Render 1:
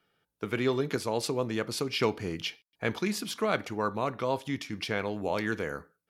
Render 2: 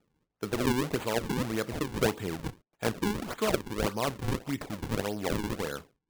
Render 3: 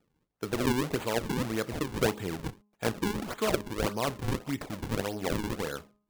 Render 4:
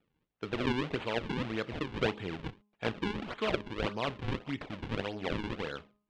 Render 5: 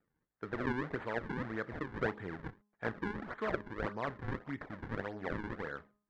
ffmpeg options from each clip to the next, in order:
-af "acrusher=samples=40:mix=1:aa=0.000001:lfo=1:lforange=64:lforate=1.7"
-af "bandreject=f=207.2:t=h:w=4,bandreject=f=414.4:t=h:w=4,bandreject=f=621.6:t=h:w=4,bandreject=f=828.8:t=h:w=4,bandreject=f=1036:t=h:w=4,bandreject=f=1243.2:t=h:w=4"
-af "lowpass=f=3100:t=q:w=1.7,volume=0.631"
-af "highshelf=f=2200:t=q:w=3:g=-7,volume=0.596"

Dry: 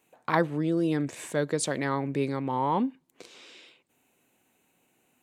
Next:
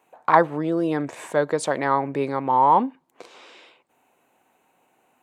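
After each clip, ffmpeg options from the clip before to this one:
-af "equalizer=f=880:w=0.62:g=14.5,volume=0.75"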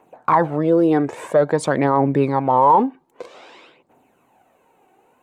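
-af "tiltshelf=f=1200:g=5,aphaser=in_gain=1:out_gain=1:delay=2.7:decay=0.47:speed=0.51:type=triangular,alimiter=limit=0.355:level=0:latency=1:release=29,volume=1.5"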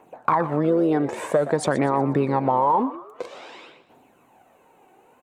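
-filter_complex "[0:a]acompressor=threshold=0.112:ratio=5,asplit=5[s0][s1][s2][s3][s4];[s1]adelay=121,afreqshift=80,volume=0.178[s5];[s2]adelay=242,afreqshift=160,volume=0.0733[s6];[s3]adelay=363,afreqshift=240,volume=0.0299[s7];[s4]adelay=484,afreqshift=320,volume=0.0123[s8];[s0][s5][s6][s7][s8]amix=inputs=5:normalize=0,volume=1.26"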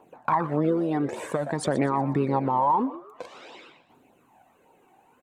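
-af "flanger=delay=0.2:depth=1.1:regen=-28:speed=1.7:shape=triangular"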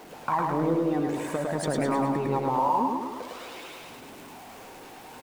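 -af "aeval=exprs='val(0)+0.5*0.0119*sgn(val(0))':c=same,aecho=1:1:105|210|315|420|525|630|735|840:0.708|0.389|0.214|0.118|0.0648|0.0356|0.0196|0.0108,volume=0.631"

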